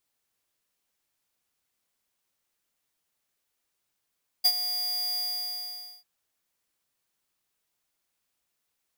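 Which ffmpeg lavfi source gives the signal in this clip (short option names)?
-f lavfi -i "aevalsrc='0.119*(2*lt(mod(4820*t,1),0.5)-1)':d=1.596:s=44100,afade=t=in:d=0.017,afade=t=out:st=0.017:d=0.06:silence=0.266,afade=t=out:st=0.73:d=0.866"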